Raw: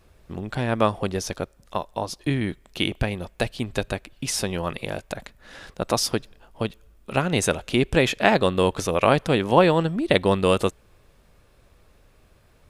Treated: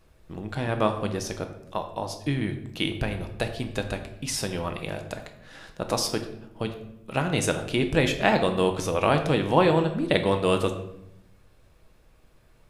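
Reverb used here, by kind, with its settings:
rectangular room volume 240 cubic metres, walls mixed, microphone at 0.59 metres
level −4 dB

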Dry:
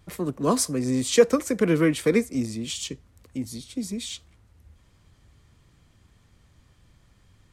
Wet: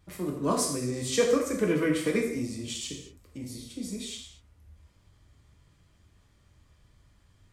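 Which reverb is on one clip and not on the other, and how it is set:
reverb whose tail is shaped and stops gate 260 ms falling, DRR −1 dB
level −7 dB

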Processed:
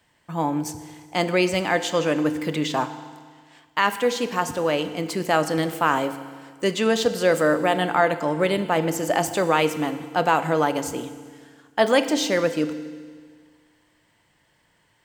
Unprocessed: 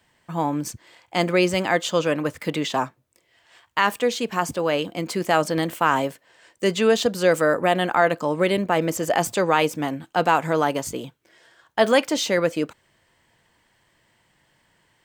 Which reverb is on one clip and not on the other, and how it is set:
feedback delay network reverb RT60 1.7 s, low-frequency decay 1.1×, high-frequency decay 1×, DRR 10 dB
level −1 dB

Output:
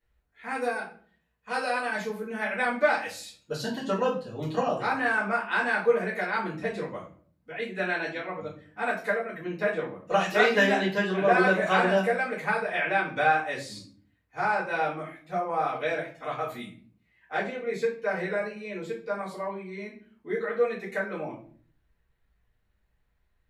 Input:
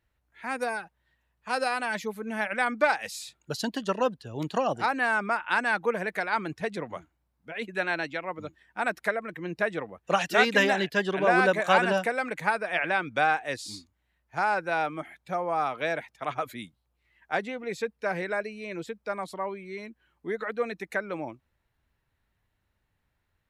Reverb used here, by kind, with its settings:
rectangular room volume 40 cubic metres, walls mixed, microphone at 2 metres
level −12 dB

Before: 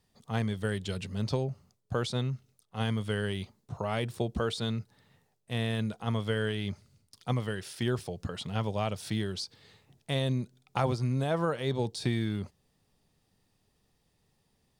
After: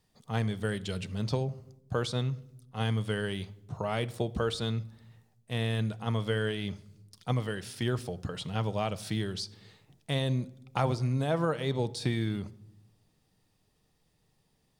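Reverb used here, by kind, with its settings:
rectangular room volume 2,600 cubic metres, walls furnished, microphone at 0.52 metres

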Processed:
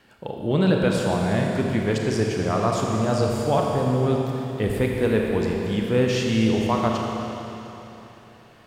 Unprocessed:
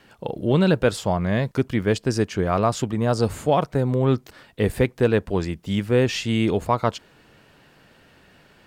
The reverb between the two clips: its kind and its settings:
four-comb reverb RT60 3.5 s, combs from 28 ms, DRR −0.5 dB
level −3.5 dB

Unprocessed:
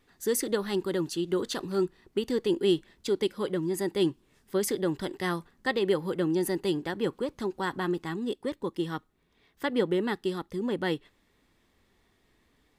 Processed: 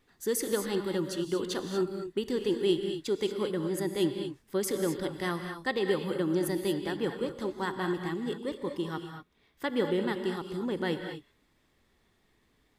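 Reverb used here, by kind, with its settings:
reverb whose tail is shaped and stops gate 260 ms rising, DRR 5.5 dB
level −2.5 dB

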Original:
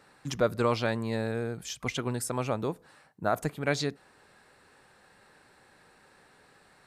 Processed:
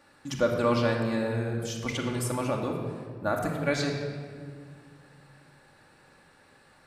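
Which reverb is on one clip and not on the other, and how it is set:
rectangular room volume 3,200 cubic metres, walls mixed, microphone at 2.4 metres
level −2 dB

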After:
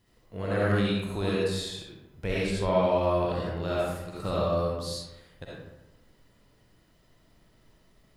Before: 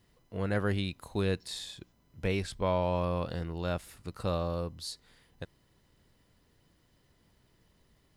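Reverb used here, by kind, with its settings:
comb and all-pass reverb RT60 0.98 s, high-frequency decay 0.55×, pre-delay 25 ms, DRR −6 dB
level −1.5 dB

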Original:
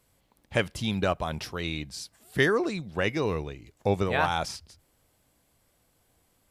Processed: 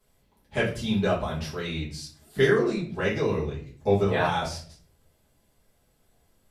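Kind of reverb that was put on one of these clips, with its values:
rectangular room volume 39 cubic metres, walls mixed, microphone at 1.5 metres
level −9 dB

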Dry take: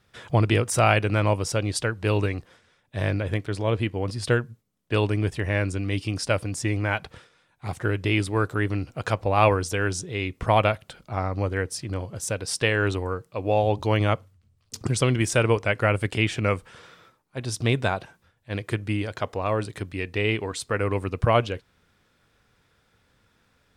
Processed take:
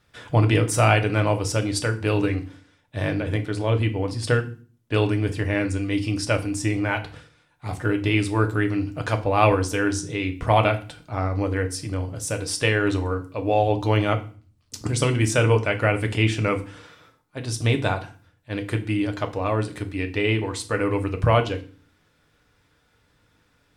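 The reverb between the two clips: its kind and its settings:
feedback delay network reverb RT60 0.39 s, low-frequency decay 1.55×, high-frequency decay 0.95×, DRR 5 dB

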